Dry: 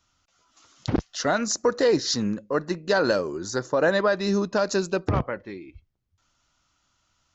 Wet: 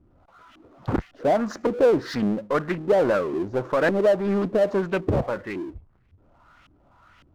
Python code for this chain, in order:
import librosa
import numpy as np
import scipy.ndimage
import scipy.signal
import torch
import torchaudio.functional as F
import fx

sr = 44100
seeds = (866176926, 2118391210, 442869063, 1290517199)

y = fx.filter_lfo_lowpass(x, sr, shape='saw_up', hz=1.8, low_hz=280.0, high_hz=2700.0, q=2.4)
y = fx.power_curve(y, sr, exponent=0.7)
y = fx.doppler_dist(y, sr, depth_ms=0.33)
y = F.gain(torch.from_numpy(y), -4.0).numpy()